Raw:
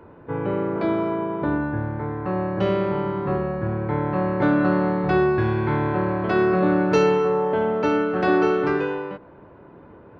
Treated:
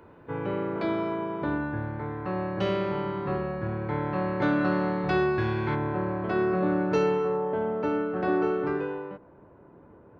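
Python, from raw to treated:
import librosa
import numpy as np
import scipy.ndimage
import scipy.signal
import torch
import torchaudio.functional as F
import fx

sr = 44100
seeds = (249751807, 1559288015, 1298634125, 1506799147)

y = fx.high_shelf(x, sr, hz=2400.0, db=fx.steps((0.0, 9.5), (5.74, -4.5), (7.36, -10.5)))
y = y * librosa.db_to_amplitude(-6.0)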